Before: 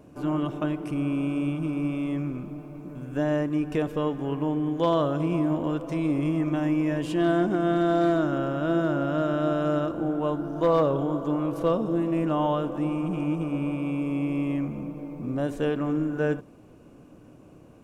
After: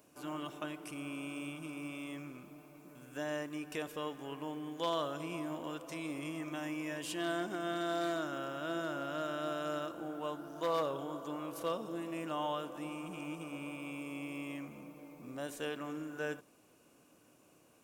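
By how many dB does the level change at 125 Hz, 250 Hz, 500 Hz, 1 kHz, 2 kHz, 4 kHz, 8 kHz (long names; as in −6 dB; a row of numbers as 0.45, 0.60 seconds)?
−20.0 dB, −16.0 dB, −12.5 dB, −9.0 dB, −6.0 dB, −2.0 dB, can't be measured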